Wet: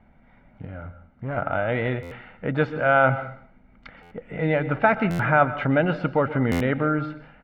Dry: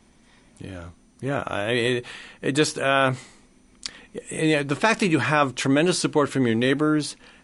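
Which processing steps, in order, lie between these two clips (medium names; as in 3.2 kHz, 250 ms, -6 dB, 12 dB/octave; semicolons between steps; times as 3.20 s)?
comb 1.4 ms, depth 60%; reverberation RT60 0.55 s, pre-delay 113 ms, DRR 13.5 dB; 0.65–1.37 s: valve stage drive 24 dB, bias 0.35; low-pass 2.1 kHz 24 dB/octave; buffer glitch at 2.02/4.02/5.10/6.51 s, samples 512, times 7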